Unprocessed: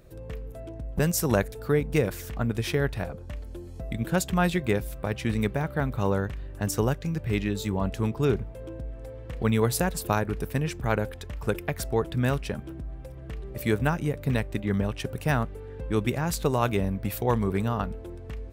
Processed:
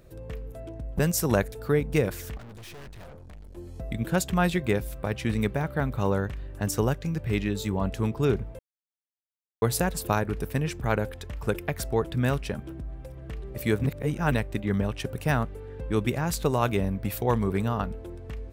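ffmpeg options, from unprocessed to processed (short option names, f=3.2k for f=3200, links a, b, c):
-filter_complex "[0:a]asplit=3[a][b][c];[a]afade=t=out:st=2.36:d=0.02[d];[b]aeval=exprs='(tanh(141*val(0)+0.6)-tanh(0.6))/141':c=same,afade=t=in:st=2.36:d=0.02,afade=t=out:st=3.56:d=0.02[e];[c]afade=t=in:st=3.56:d=0.02[f];[d][e][f]amix=inputs=3:normalize=0,asplit=5[g][h][i][j][k];[g]atrim=end=8.59,asetpts=PTS-STARTPTS,afade=t=out:st=8.586:d=0.004:c=hsin[l];[h]atrim=start=8.59:end=9.62,asetpts=PTS-STARTPTS,volume=0[m];[i]atrim=start=9.62:end=13.842,asetpts=PTS-STARTPTS,afade=t=in:d=0.004:c=hsin[n];[j]atrim=start=13.838:end=14.322,asetpts=PTS-STARTPTS,areverse[o];[k]atrim=start=14.318[p];[l][m][n]concat=n=3:v=0:a=1[q];[q][o]acrossfade=d=0.004:c1=hsin:c2=hsin[r];[r][p]acrossfade=d=0.004:c1=hsin:c2=hsin"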